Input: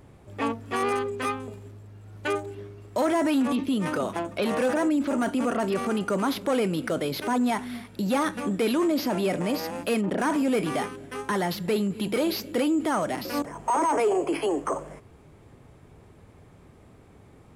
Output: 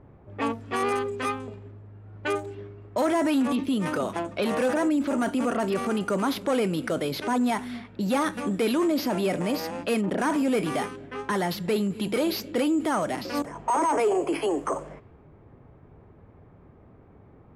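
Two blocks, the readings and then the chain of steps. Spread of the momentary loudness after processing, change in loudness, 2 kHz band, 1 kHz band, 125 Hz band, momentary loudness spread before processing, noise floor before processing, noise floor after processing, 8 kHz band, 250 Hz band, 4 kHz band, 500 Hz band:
9 LU, 0.0 dB, 0.0 dB, 0.0 dB, 0.0 dB, 9 LU, -53 dBFS, -53 dBFS, -0.5 dB, 0.0 dB, 0.0 dB, 0.0 dB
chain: low-pass opened by the level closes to 1300 Hz, open at -24.5 dBFS

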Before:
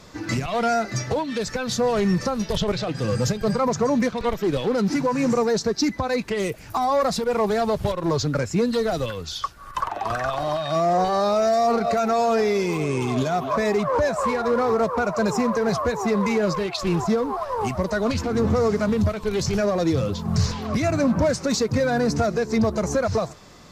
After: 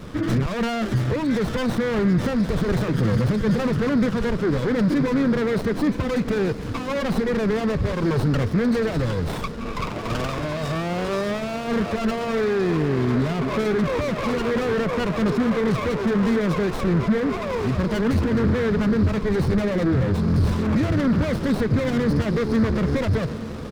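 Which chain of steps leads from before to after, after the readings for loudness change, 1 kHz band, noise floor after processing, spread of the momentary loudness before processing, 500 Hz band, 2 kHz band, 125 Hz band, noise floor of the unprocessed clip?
+0.5 dB, -6.0 dB, -29 dBFS, 6 LU, -2.0 dB, +1.0 dB, +4.5 dB, -40 dBFS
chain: spectral gate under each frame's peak -30 dB strong; in parallel at +0.5 dB: limiter -21 dBFS, peak gain reduction 9.5 dB; on the sum: soft clip -21.5 dBFS, distortion -10 dB; fixed phaser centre 2900 Hz, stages 6; on a send: diffused feedback echo 0.934 s, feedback 63%, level -14 dB; on the sum: downsampling 11025 Hz; running maximum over 17 samples; gain +6.5 dB

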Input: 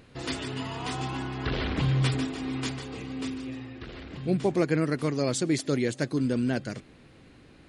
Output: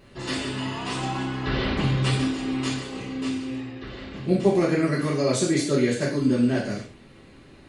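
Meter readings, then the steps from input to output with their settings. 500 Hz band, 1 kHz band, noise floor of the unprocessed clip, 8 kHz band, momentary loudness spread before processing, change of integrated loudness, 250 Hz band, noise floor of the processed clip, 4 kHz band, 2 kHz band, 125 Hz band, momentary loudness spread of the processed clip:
+5.0 dB, +4.5 dB, -54 dBFS, +4.5 dB, 12 LU, +4.0 dB, +5.0 dB, -50 dBFS, +4.5 dB, +4.5 dB, +2.5 dB, 12 LU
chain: non-linear reverb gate 0.17 s falling, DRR -7.5 dB; gain -3.5 dB

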